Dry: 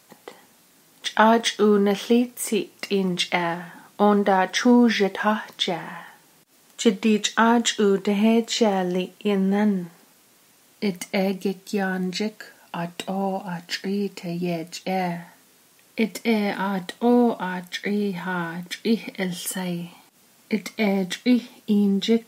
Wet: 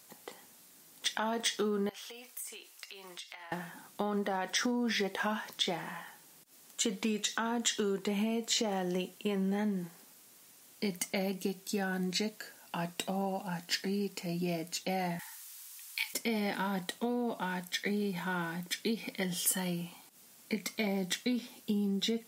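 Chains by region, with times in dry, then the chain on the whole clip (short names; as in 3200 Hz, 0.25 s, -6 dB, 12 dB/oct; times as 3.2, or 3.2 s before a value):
1.89–3.52 HPF 900 Hz + compressor 12:1, threshold -38 dBFS
15.19–16.14 steep high-pass 820 Hz 96 dB/oct + high shelf 2300 Hz +9.5 dB
whole clip: limiter -12.5 dBFS; compressor, threshold -22 dBFS; high shelf 4800 Hz +8.5 dB; gain -7 dB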